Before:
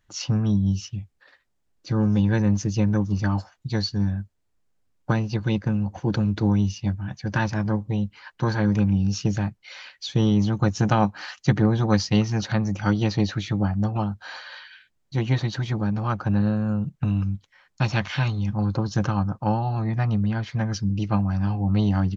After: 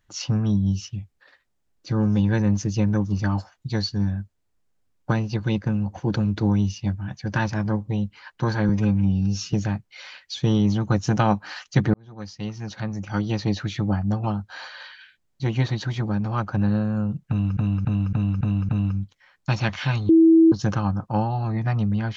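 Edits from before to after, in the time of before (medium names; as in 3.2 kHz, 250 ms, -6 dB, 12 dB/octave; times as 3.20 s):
8.69–9.25 s: stretch 1.5×
11.66–13.50 s: fade in
17.01–17.29 s: loop, 6 plays
18.41–18.84 s: bleep 326 Hz -10 dBFS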